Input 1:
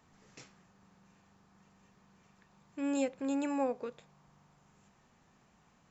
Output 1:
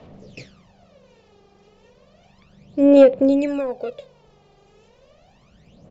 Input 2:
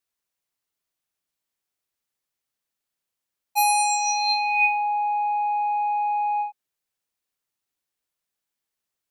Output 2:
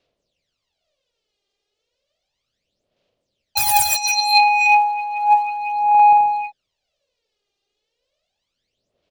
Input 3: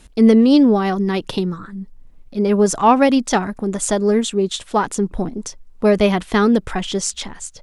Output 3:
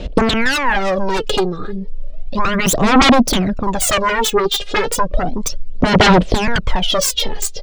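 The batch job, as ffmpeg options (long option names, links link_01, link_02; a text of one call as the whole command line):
ffmpeg -i in.wav -filter_complex "[0:a]firequalizer=gain_entry='entry(320,0);entry(580,10);entry(840,-6);entry(1600,-9);entry(2900,2);entry(4800,3)':delay=0.05:min_phase=1,acrossover=split=520|5100[link_01][link_02][link_03];[link_03]acrusher=bits=3:mix=0:aa=0.000001[link_04];[link_01][link_02][link_04]amix=inputs=3:normalize=0,aeval=exprs='1.26*sin(PI/2*8.91*val(0)/1.26)':channel_layout=same,acompressor=threshold=-5dB:ratio=6,aphaser=in_gain=1:out_gain=1:delay=2.5:decay=0.73:speed=0.33:type=sinusoidal,volume=-12.5dB" out.wav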